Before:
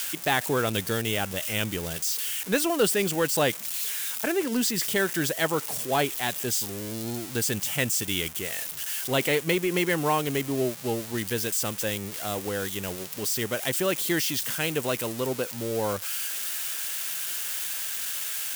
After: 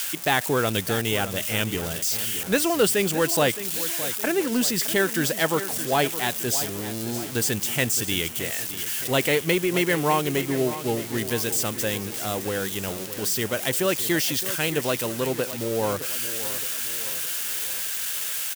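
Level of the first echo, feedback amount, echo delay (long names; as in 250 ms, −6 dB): −13.0 dB, 49%, 617 ms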